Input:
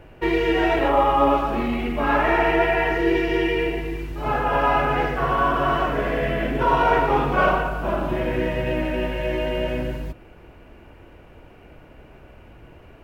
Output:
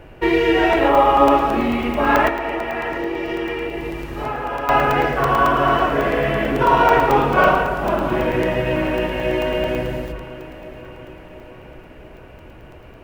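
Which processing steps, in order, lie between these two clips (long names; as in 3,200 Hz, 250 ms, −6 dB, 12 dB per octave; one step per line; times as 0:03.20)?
mains-hum notches 50/100/150/200/250 Hz
0:02.28–0:04.69: downward compressor, threshold −27 dBFS, peak gain reduction 12 dB
delay that swaps between a low-pass and a high-pass 346 ms, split 830 Hz, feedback 76%, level −13.5 dB
regular buffer underruns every 0.11 s, samples 128, zero, from 0:00.73
level +4.5 dB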